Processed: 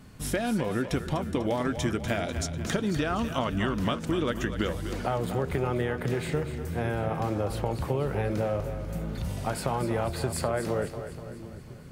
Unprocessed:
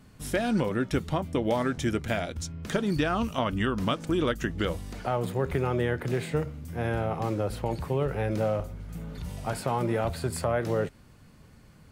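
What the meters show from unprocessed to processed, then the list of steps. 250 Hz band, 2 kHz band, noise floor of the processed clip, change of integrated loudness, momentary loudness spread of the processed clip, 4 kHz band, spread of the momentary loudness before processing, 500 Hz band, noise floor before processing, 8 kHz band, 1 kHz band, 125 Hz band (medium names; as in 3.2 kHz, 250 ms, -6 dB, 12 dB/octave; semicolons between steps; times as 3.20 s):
-0.5 dB, -0.5 dB, -43 dBFS, -0.5 dB, 6 LU, +0.5 dB, 7 LU, -1.0 dB, -54 dBFS, +3.0 dB, -0.5 dB, 0.0 dB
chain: compression 3:1, threshold -30 dBFS, peak gain reduction 7 dB; two-band feedback delay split 350 Hz, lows 733 ms, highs 247 ms, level -10 dB; trim +4 dB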